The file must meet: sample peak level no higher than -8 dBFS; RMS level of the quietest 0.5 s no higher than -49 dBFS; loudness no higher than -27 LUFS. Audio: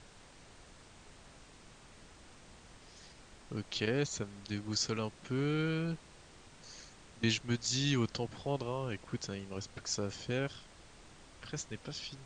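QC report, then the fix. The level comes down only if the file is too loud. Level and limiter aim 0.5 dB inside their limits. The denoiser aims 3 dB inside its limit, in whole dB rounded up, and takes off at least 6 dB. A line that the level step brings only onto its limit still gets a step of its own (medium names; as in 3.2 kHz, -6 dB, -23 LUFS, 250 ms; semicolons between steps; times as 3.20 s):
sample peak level -18.5 dBFS: pass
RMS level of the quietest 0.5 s -57 dBFS: pass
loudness -36.5 LUFS: pass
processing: none needed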